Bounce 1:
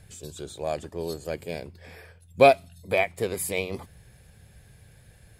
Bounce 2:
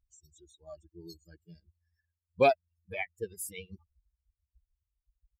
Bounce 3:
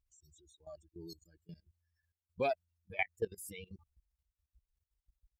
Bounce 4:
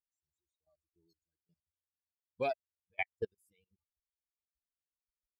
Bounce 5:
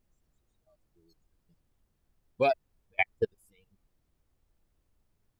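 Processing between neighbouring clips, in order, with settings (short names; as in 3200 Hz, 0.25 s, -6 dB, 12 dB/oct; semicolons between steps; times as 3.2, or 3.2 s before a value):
per-bin expansion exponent 3; gain -4.5 dB
level quantiser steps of 17 dB; gain +3.5 dB
upward expander 2.5:1, over -50 dBFS
added noise brown -80 dBFS; gain +8.5 dB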